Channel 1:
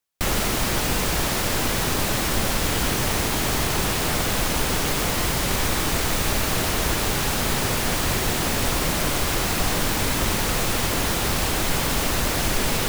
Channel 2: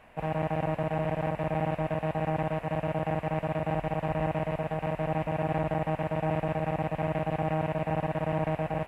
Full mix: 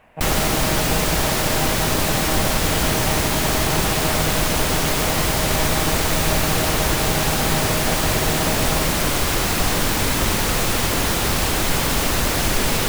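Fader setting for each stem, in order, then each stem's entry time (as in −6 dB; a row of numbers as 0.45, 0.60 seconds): +3.0, +2.0 decibels; 0.00, 0.00 seconds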